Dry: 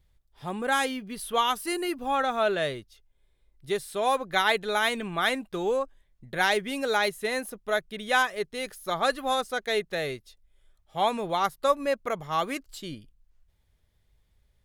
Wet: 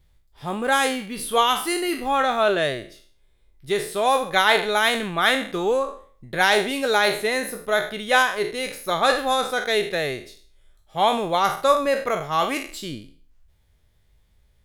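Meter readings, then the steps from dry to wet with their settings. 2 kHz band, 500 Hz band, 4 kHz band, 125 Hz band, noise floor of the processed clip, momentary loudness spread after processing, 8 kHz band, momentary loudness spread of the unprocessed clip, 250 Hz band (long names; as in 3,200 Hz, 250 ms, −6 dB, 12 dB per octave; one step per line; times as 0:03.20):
+6.0 dB, +6.0 dB, +7.0 dB, +5.0 dB, −60 dBFS, 10 LU, +7.0 dB, 11 LU, +5.0 dB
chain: peak hold with a decay on every bin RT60 0.46 s
level +4.5 dB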